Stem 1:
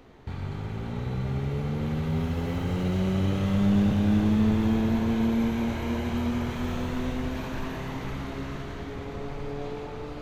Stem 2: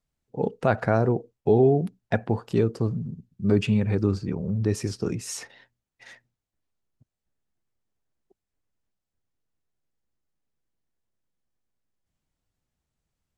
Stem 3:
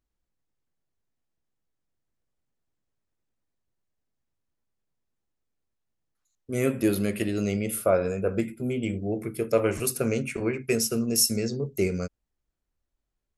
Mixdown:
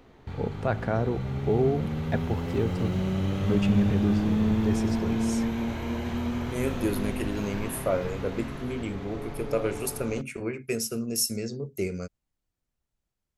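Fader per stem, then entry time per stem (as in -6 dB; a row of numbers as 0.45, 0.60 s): -2.0, -5.5, -4.5 dB; 0.00, 0.00, 0.00 s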